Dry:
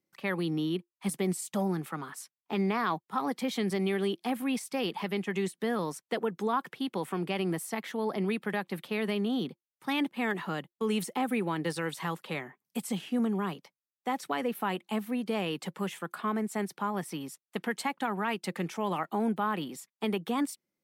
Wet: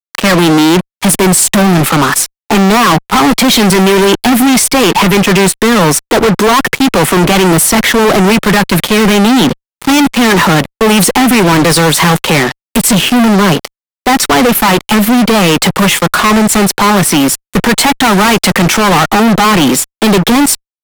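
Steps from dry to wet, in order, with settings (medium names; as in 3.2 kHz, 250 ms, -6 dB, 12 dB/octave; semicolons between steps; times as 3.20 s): 18.04–18.53 s: CVSD coder 64 kbps; fuzz box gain 47 dB, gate -50 dBFS; trim +7.5 dB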